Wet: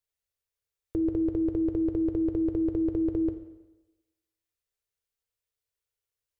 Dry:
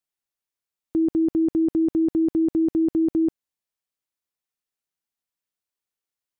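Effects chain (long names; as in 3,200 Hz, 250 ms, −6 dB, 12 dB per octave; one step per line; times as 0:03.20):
drawn EQ curve 100 Hz 0 dB, 250 Hz −28 dB, 450 Hz −4 dB, 750 Hz −15 dB, 2,100 Hz −11 dB
on a send: convolution reverb RT60 1.1 s, pre-delay 5 ms, DRR 6.5 dB
on the sum: level +9 dB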